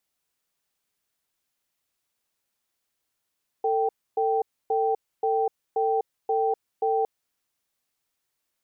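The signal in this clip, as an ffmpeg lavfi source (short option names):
-f lavfi -i "aevalsrc='0.0668*(sin(2*PI*447*t)+sin(2*PI*780*t))*clip(min(mod(t,0.53),0.25-mod(t,0.53))/0.005,0,1)':d=3.41:s=44100"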